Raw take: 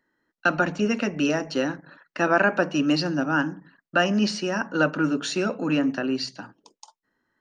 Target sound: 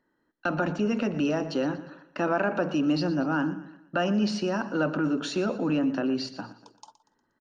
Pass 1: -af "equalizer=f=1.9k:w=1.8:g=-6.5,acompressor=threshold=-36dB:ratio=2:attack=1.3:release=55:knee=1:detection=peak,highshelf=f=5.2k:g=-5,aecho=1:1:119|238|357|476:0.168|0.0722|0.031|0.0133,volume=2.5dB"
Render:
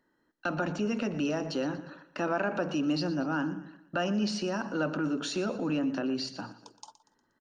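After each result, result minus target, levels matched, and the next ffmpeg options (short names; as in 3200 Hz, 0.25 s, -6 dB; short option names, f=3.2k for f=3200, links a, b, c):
8000 Hz band +5.0 dB; compressor: peak gain reduction +4 dB
-af "equalizer=f=1.9k:w=1.8:g=-6.5,acompressor=threshold=-36dB:ratio=2:attack=1.3:release=55:knee=1:detection=peak,highshelf=f=5.2k:g=-13.5,aecho=1:1:119|238|357|476:0.168|0.0722|0.031|0.0133,volume=2.5dB"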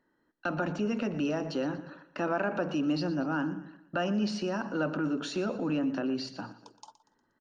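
compressor: peak gain reduction +4 dB
-af "equalizer=f=1.9k:w=1.8:g=-6.5,acompressor=threshold=-27.5dB:ratio=2:attack=1.3:release=55:knee=1:detection=peak,highshelf=f=5.2k:g=-13.5,aecho=1:1:119|238|357|476:0.168|0.0722|0.031|0.0133,volume=2.5dB"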